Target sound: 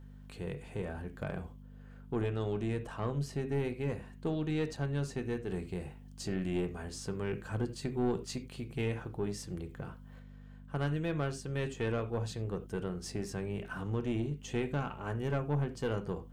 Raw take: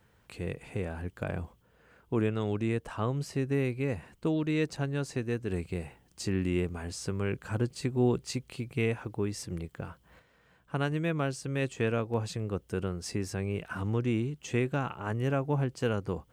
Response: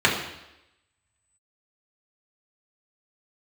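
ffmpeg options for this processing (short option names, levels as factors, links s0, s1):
-filter_complex "[0:a]aeval=exprs='val(0)+0.00562*(sin(2*PI*50*n/s)+sin(2*PI*2*50*n/s)/2+sin(2*PI*3*50*n/s)/3+sin(2*PI*4*50*n/s)/4+sin(2*PI*5*50*n/s)/5)':c=same,asplit=2[s0][s1];[1:a]atrim=start_sample=2205,atrim=end_sample=4410[s2];[s1][s2]afir=irnorm=-1:irlink=0,volume=0.0596[s3];[s0][s3]amix=inputs=2:normalize=0,aeval=exprs='(tanh(10*val(0)+0.3)-tanh(0.3))/10':c=same,volume=0.631"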